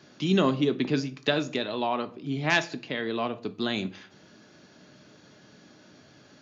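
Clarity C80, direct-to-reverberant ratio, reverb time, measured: 22.0 dB, 10.0 dB, 0.45 s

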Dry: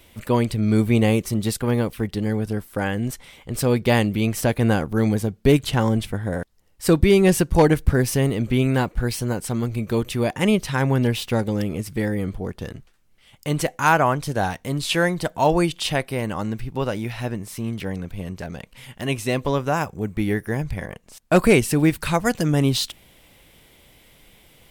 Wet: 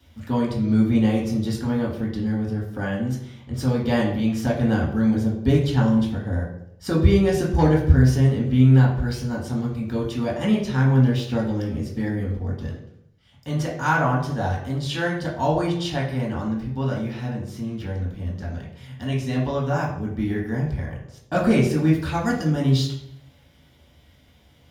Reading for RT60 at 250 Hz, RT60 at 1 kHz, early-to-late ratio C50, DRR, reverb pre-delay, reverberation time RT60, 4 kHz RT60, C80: 0.90 s, 0.70 s, 5.0 dB, -5.0 dB, 3 ms, 0.75 s, 0.60 s, 8.0 dB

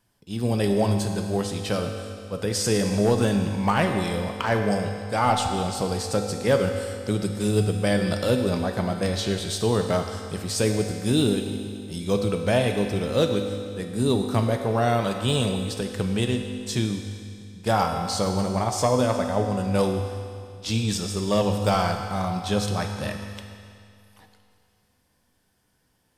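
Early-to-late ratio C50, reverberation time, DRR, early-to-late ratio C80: 5.5 dB, 2.4 s, 4.0 dB, 6.0 dB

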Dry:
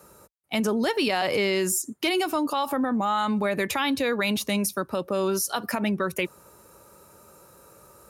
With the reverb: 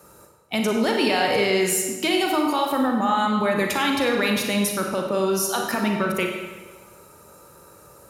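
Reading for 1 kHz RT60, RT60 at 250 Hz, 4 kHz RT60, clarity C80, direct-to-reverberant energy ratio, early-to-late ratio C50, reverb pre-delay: 1.3 s, 1.3 s, 1.1 s, 4.5 dB, 1.0 dB, 3.0 dB, 34 ms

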